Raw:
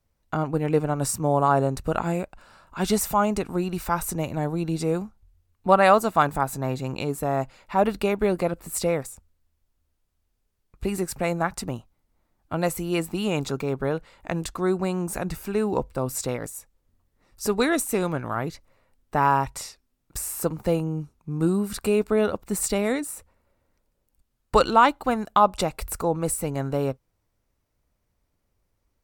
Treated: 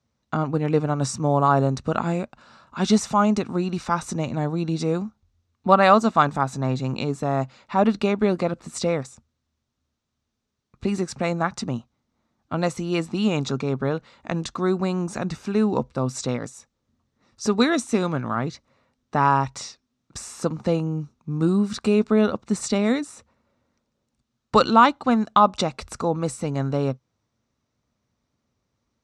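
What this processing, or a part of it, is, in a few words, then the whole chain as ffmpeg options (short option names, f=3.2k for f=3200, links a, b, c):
car door speaker: -af "highpass=83,equalizer=f=130:t=q:w=4:g=5,equalizer=f=230:t=q:w=4:g=9,equalizer=f=1.2k:t=q:w=4:g=4,equalizer=f=3.8k:t=q:w=4:g=5,equalizer=f=5.9k:t=q:w=4:g=5,lowpass=f=7.2k:w=0.5412,lowpass=f=7.2k:w=1.3066"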